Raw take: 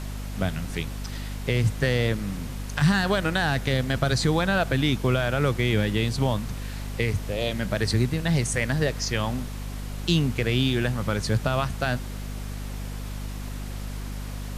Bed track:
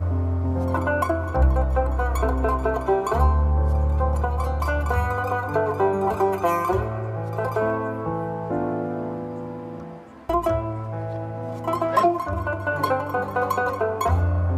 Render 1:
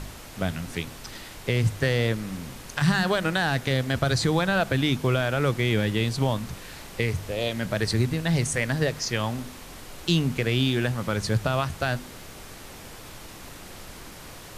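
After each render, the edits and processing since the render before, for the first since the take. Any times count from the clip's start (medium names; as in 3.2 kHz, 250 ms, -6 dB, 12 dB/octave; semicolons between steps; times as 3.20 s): de-hum 50 Hz, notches 5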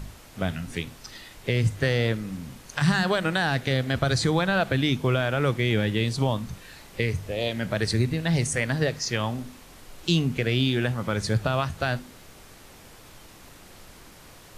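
noise print and reduce 6 dB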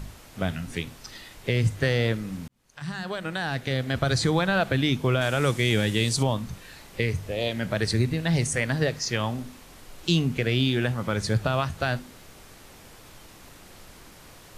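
2.48–4.16 s: fade in; 5.21–6.23 s: peaking EQ 8.2 kHz +12.5 dB 1.6 oct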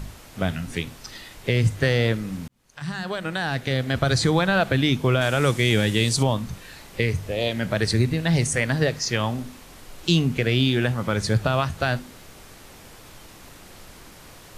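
trim +3 dB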